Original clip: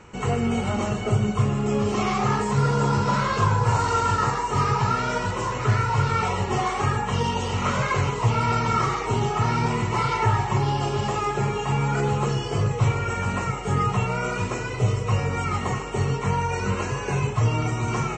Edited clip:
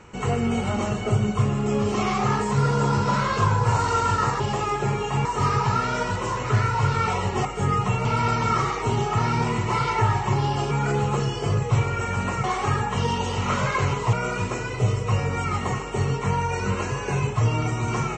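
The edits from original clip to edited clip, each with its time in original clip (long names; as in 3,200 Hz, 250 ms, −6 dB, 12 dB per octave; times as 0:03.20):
0:06.60–0:08.29: swap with 0:13.53–0:14.13
0:10.95–0:11.80: move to 0:04.40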